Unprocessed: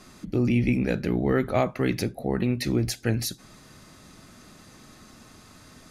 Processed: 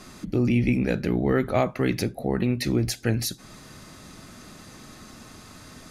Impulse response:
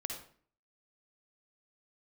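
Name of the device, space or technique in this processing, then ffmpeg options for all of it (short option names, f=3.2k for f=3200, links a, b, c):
parallel compression: -filter_complex "[0:a]asplit=2[a][b];[b]acompressor=threshold=-38dB:ratio=6,volume=-3dB[c];[a][c]amix=inputs=2:normalize=0"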